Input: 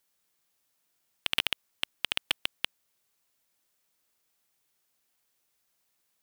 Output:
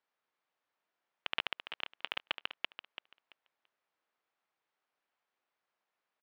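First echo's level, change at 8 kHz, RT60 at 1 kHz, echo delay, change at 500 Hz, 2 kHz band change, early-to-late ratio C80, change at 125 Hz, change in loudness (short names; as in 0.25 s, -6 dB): -9.5 dB, under -25 dB, none, 0.336 s, -2.5 dB, -5.0 dB, none, under -10 dB, -7.5 dB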